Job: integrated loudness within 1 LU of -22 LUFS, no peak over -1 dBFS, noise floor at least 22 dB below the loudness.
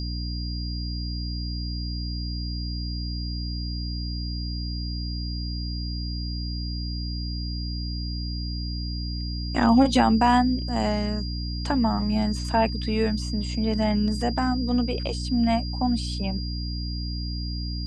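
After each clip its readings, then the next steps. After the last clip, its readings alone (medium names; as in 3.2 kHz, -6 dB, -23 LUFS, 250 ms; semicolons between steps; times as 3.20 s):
hum 60 Hz; highest harmonic 300 Hz; hum level -28 dBFS; steady tone 4.8 kHz; tone level -36 dBFS; loudness -26.5 LUFS; peak level -6.5 dBFS; loudness target -22.0 LUFS
-> hum notches 60/120/180/240/300 Hz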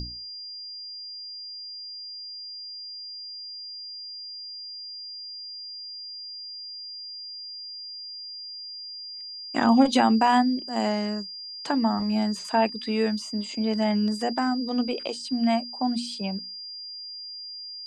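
hum not found; steady tone 4.8 kHz; tone level -36 dBFS
-> band-stop 4.8 kHz, Q 30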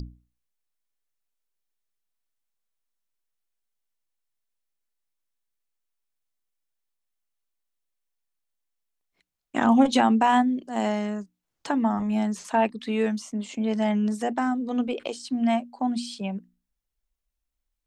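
steady tone not found; loudness -25.0 LUFS; peak level -6.0 dBFS; loudness target -22.0 LUFS
-> trim +3 dB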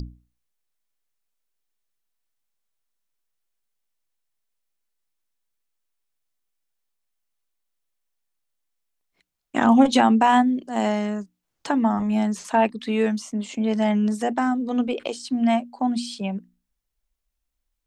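loudness -22.0 LUFS; peak level -3.0 dBFS; noise floor -80 dBFS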